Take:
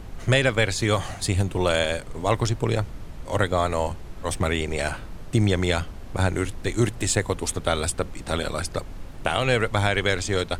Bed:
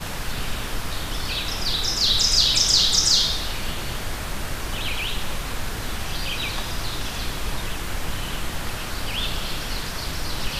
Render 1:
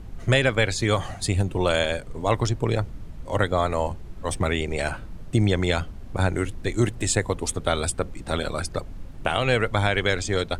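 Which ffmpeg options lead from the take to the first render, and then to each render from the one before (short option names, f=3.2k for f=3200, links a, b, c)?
-af "afftdn=nr=7:nf=-38"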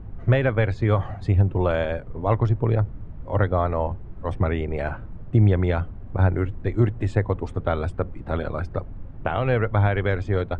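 -af "lowpass=1.5k,equalizer=f=100:t=o:w=0.69:g=6"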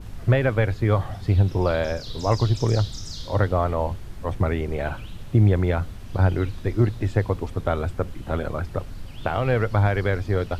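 -filter_complex "[1:a]volume=-20.5dB[a];[0:a][a]amix=inputs=2:normalize=0"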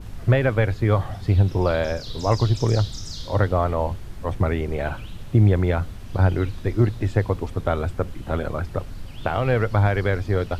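-af "volume=1dB"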